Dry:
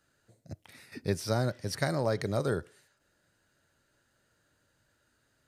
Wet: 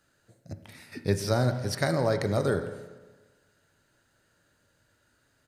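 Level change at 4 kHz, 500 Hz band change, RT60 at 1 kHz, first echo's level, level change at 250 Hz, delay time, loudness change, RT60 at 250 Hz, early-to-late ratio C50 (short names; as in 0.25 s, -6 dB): +3.0 dB, +4.0 dB, 1.3 s, -17.5 dB, +4.0 dB, 0.167 s, +4.0 dB, 1.3 s, 9.5 dB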